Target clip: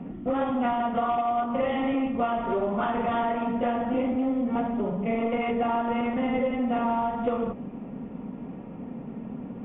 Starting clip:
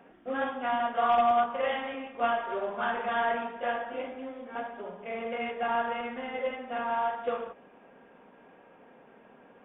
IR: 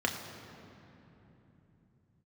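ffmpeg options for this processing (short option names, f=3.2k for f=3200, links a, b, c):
-filter_complex "[0:a]acrossover=split=200[a][b];[a]aeval=exprs='0.0112*sin(PI/2*6.31*val(0)/0.0112)':c=same[c];[c][b]amix=inputs=2:normalize=0,lowpass=f=2.3k:p=1,bandreject=f=1.6k:w=5.4,acompressor=threshold=-31dB:ratio=6,equalizer=f=240:w=1.4:g=6.5,volume=7dB"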